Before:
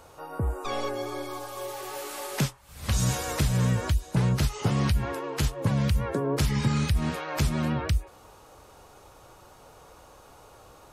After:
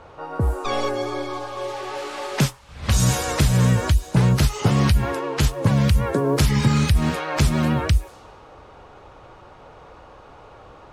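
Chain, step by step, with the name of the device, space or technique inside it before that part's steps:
cassette deck with a dynamic noise filter (white noise bed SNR 33 dB; low-pass that shuts in the quiet parts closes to 2,400 Hz, open at −23 dBFS)
level +7 dB

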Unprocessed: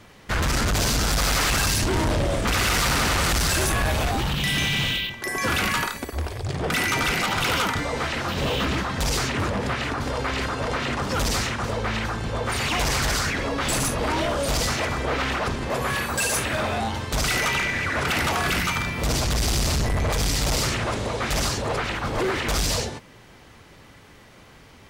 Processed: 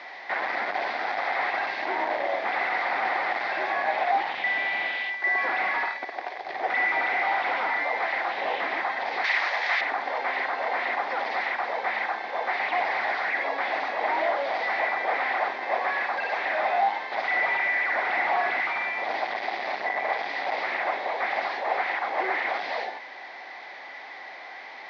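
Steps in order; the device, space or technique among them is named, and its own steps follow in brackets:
digital answering machine (band-pass filter 400–3,400 Hz; linear delta modulator 32 kbit/s, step −37.5 dBFS; loudspeaker in its box 450–4,300 Hz, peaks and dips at 460 Hz −6 dB, 760 Hz +10 dB, 1,300 Hz −6 dB, 2,000 Hz +10 dB, 2,900 Hz −8 dB)
0:09.24–0:09.81: meter weighting curve ITU-R 468

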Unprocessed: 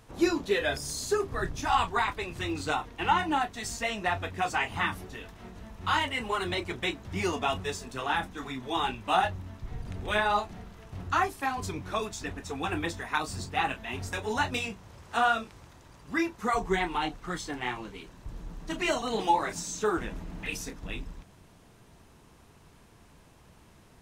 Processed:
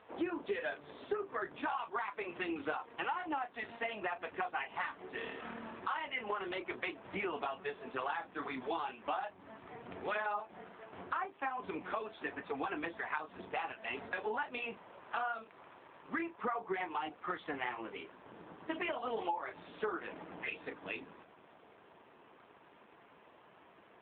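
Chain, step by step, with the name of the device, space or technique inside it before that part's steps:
0:05.12–0:05.80: flutter between parallel walls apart 4.5 metres, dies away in 0.9 s
0:19.34–0:20.78: dynamic equaliser 220 Hz, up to −3 dB, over −50 dBFS, Q 2.7
voicemail (band-pass filter 380–2,800 Hz; downward compressor 8 to 1, threshold −37 dBFS, peak gain reduction 17 dB; level +4 dB; AMR narrowband 7.4 kbit/s 8,000 Hz)

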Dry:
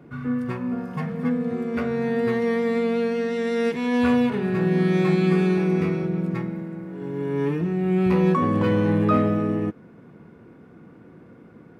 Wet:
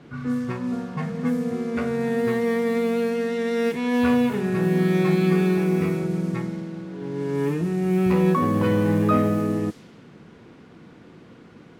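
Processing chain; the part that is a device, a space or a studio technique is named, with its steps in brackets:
cassette deck with a dynamic noise filter (white noise bed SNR 26 dB; low-pass that shuts in the quiet parts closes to 2,000 Hz, open at −18 dBFS)

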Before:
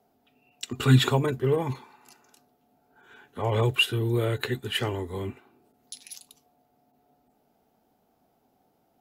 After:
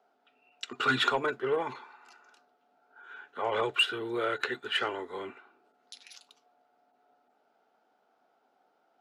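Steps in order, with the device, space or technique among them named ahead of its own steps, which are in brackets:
intercom (band-pass filter 470–4,300 Hz; parametric band 1,400 Hz +10 dB 0.31 octaves; soft clipping −16.5 dBFS, distortion −16 dB)

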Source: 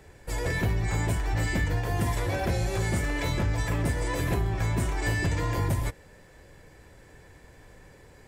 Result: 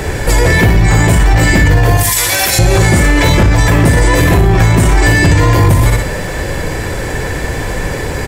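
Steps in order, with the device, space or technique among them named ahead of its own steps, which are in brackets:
0:01.97–0:02.59: first-order pre-emphasis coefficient 0.97
repeating echo 61 ms, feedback 28%, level −8.5 dB
loud club master (downward compressor 2.5 to 1, threshold −30 dBFS, peak gain reduction 7 dB; hard clipping −24.5 dBFS, distortion −27 dB; boost into a limiter +34.5 dB)
level −1 dB

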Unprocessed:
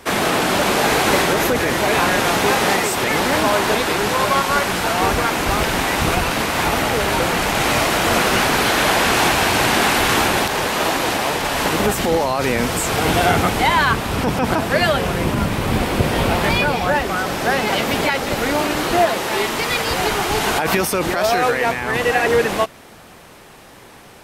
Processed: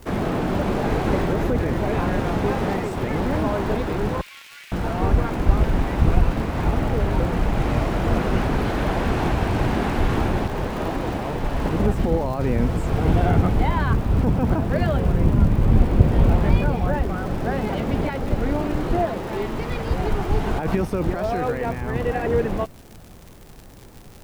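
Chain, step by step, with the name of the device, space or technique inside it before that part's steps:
0:04.21–0:04.72: Chebyshev high-pass filter 2,300 Hz, order 3
spectral tilt −4.5 dB per octave
vinyl LP (surface crackle 110 per second −22 dBFS; white noise bed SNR 38 dB)
level −10 dB

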